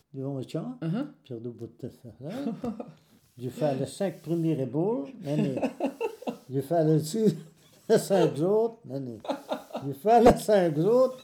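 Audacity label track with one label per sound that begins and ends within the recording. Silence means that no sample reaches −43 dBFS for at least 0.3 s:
3.380000	7.470000	sound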